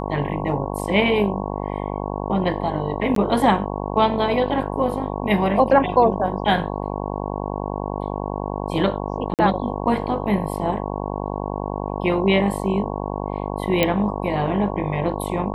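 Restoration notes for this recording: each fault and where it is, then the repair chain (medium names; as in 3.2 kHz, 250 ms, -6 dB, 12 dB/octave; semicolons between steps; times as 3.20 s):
buzz 50 Hz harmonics 22 -27 dBFS
3.15–3.16 s: dropout 13 ms
9.34–9.39 s: dropout 48 ms
13.83 s: pop -4 dBFS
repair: de-click; de-hum 50 Hz, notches 22; interpolate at 3.15 s, 13 ms; interpolate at 9.34 s, 48 ms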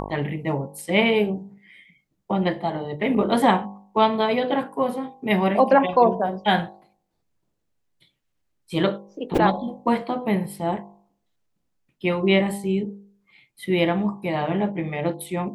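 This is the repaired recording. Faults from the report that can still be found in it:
nothing left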